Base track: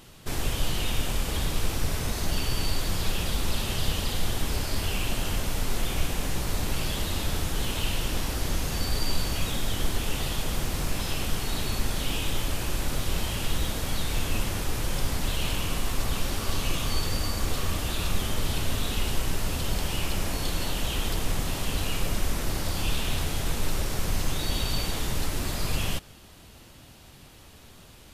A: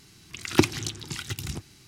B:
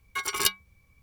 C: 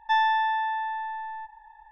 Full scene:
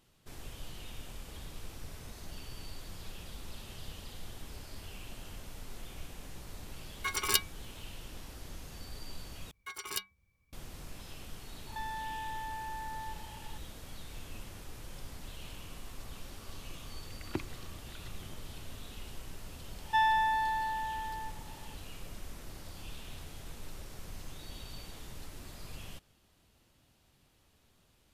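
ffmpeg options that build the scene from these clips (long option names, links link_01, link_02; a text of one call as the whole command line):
ffmpeg -i bed.wav -i cue0.wav -i cue1.wav -i cue2.wav -filter_complex "[2:a]asplit=2[link_01][link_02];[3:a]asplit=2[link_03][link_04];[0:a]volume=-18dB[link_05];[link_03]acompressor=threshold=-37dB:ratio=6:attack=3.2:release=140:knee=1:detection=peak[link_06];[1:a]lowpass=2900[link_07];[link_05]asplit=2[link_08][link_09];[link_08]atrim=end=9.514[link_10];[link_02]atrim=end=1.02,asetpts=PTS-STARTPTS,volume=-12.5dB[link_11];[link_09]atrim=start=10.526[link_12];[link_01]atrim=end=1.02,asetpts=PTS-STARTPTS,volume=-3.5dB,afade=type=in:duration=0.004:curve=hsin,afade=type=out:start_time=1.016:duration=0.004:curve=hsin,adelay=6890[link_13];[link_06]atrim=end=1.91,asetpts=PTS-STARTPTS,volume=-2dB,afade=type=in:duration=0.004:curve=hsin,afade=type=out:start_time=1.906:duration=0.004:curve=hsin,adelay=11670[link_14];[link_07]atrim=end=1.87,asetpts=PTS-STARTPTS,volume=-17.5dB,afade=type=in:duration=0.004:curve=hsin,afade=type=out:start_time=1.866:duration=0.004:curve=hsin,adelay=16760[link_15];[link_04]atrim=end=1.91,asetpts=PTS-STARTPTS,volume=-4.5dB,afade=type=in:duration=0.004:curve=hsin,afade=type=out:start_time=1.906:duration=0.004:curve=hsin,adelay=19840[link_16];[link_10][link_11]acrossfade=duration=0.004:curve1=hsin:curve2=hsin[link_17];[link_17][link_12]acrossfade=duration=0.004:curve1=hsin:curve2=hsin[link_18];[link_18][link_13][link_14][link_15][link_16]amix=inputs=5:normalize=0" out.wav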